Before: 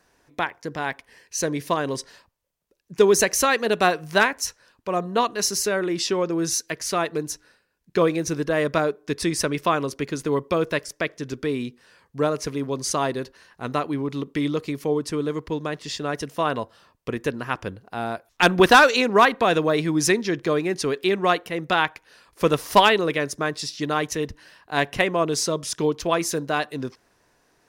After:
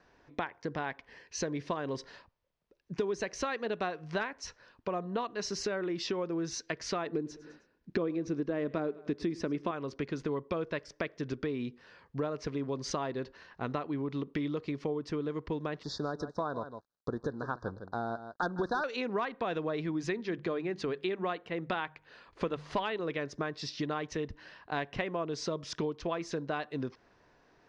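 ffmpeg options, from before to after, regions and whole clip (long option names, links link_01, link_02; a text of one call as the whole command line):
ffmpeg -i in.wav -filter_complex "[0:a]asettb=1/sr,asplit=3[link_01][link_02][link_03];[link_01]atrim=end=7.064[link_04];[link_02]atrim=start=7.06:end=9.71,asetpts=PTS-STARTPTS,afade=type=in:duration=0.004:curve=qsin,afade=type=out:start_time=2.646:duration=0.004:curve=qsin,equalizer=frequency=280:width=0.86:gain=10,aecho=1:1:104|208|312:0.075|0.0375|0.0187,atrim=end_sample=116865[link_05];[link_03]atrim=start=9.706[link_06];[link_04][link_05]acrossfade=duration=0.004:curve1=hsin:curve2=qsin[link_07];[link_07][link_06]acrossfade=duration=0.004:curve1=qsin:curve2=hsin,asettb=1/sr,asplit=3[link_08][link_09][link_10];[link_08]atrim=end=15.834[link_11];[link_09]atrim=start=15.83:end=18.84,asetpts=PTS-STARTPTS,afade=type=in:duration=0.004:curve=qsin,afade=type=out:start_time=3.006:duration=0.004:curve=qsin,aeval=exprs='sgn(val(0))*max(abs(val(0))-0.00398,0)':channel_layout=same,asuperstop=centerf=2500:order=12:qfactor=1.2,aecho=1:1:156:0.2,atrim=end_sample=132741[link_12];[link_10]atrim=start=18.836[link_13];[link_11][link_12]acrossfade=duration=0.004:curve1=hsin:curve2=qsin[link_14];[link_14][link_13]acrossfade=duration=0.004:curve1=qsin:curve2=hsin,asettb=1/sr,asplit=3[link_15][link_16][link_17];[link_15]atrim=end=19.864[link_18];[link_16]atrim=start=19.86:end=23,asetpts=PTS-STARTPTS,afade=type=in:duration=0.004:curve=qsin,afade=type=out:start_time=3.136:duration=0.004:curve=qsin,equalizer=frequency=5500:width=5.9:gain=-8,bandreject=frequency=50:width_type=h:width=6,bandreject=frequency=100:width_type=h:width=6,bandreject=frequency=150:width_type=h:width=6,bandreject=frequency=200:width_type=h:width=6[link_19];[link_17]atrim=start=22.996[link_20];[link_18][link_19]acrossfade=duration=0.004:curve1=hsin:curve2=qsin[link_21];[link_21][link_20]acrossfade=duration=0.004:curve1=qsin:curve2=hsin,lowpass=frequency=5600:width=0.5412,lowpass=frequency=5600:width=1.3066,highshelf=frequency=3500:gain=-8,acompressor=threshold=-32dB:ratio=5" out.wav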